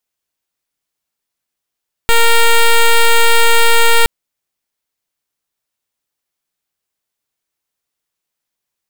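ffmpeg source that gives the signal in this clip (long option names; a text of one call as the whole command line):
ffmpeg -f lavfi -i "aevalsrc='0.422*(2*lt(mod(463*t,1),0.08)-1)':duration=1.97:sample_rate=44100" out.wav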